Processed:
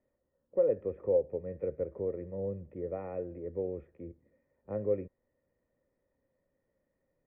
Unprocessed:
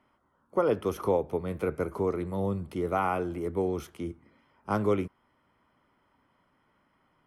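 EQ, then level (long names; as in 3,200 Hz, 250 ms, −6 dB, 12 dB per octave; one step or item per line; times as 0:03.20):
formant resonators in series e
high-frequency loss of the air 150 metres
spectral tilt −3.5 dB per octave
0.0 dB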